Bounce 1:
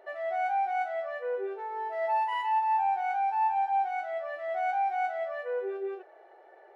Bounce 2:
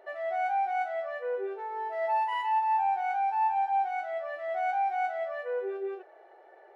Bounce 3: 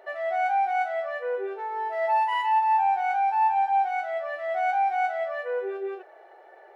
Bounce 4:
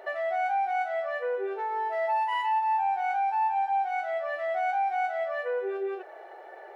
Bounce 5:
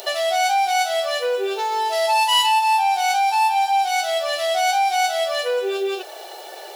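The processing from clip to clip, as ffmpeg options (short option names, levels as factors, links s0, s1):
-af anull
-af "lowshelf=f=440:g=-6.5,volume=2"
-af "acompressor=threshold=0.0141:ratio=2,volume=1.78"
-af "aexciter=amount=11.2:drive=8.5:freq=3000,volume=2.51"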